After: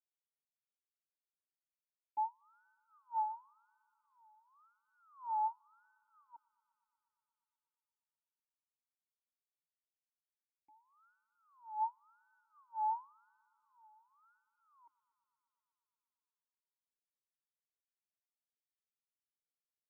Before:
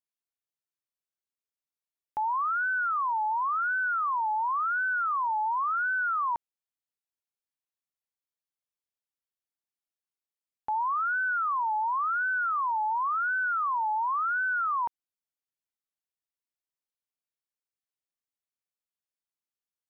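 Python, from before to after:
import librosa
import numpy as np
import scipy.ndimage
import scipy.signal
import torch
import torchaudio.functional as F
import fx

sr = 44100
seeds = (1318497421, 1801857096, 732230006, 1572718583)

p1 = fx.phaser_stages(x, sr, stages=12, low_hz=180.0, high_hz=1200.0, hz=0.31, feedback_pct=30)
p2 = fx.vowel_filter(p1, sr, vowel='u')
p3 = p2 + fx.echo_wet_highpass(p2, sr, ms=120, feedback_pct=80, hz=1400.0, wet_db=-13.5, dry=0)
p4 = fx.upward_expand(p3, sr, threshold_db=-45.0, expansion=2.5)
y = F.gain(torch.from_numpy(p4), 1.0).numpy()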